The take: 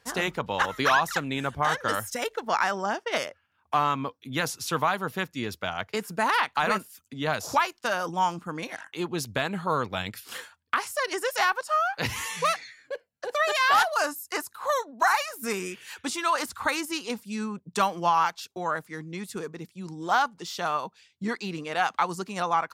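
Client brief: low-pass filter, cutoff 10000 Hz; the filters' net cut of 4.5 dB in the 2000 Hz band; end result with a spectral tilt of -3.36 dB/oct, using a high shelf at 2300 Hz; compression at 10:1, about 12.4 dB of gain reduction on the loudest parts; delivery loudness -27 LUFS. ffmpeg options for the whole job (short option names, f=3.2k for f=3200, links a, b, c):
-af "lowpass=10k,equalizer=f=2k:t=o:g=-8,highshelf=f=2.3k:g=3.5,acompressor=threshold=-31dB:ratio=10,volume=9.5dB"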